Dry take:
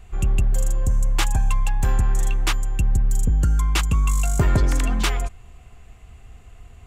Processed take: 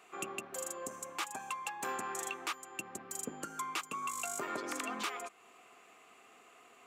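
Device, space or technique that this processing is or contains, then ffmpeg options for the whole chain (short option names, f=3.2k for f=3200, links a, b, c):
laptop speaker: -af "highpass=f=290:w=0.5412,highpass=f=290:w=1.3066,equalizer=f=1.2k:t=o:w=0.31:g=8.5,equalizer=f=2.4k:t=o:w=0.27:g=4,alimiter=limit=-21.5dB:level=0:latency=1:release=418,volume=-4dB"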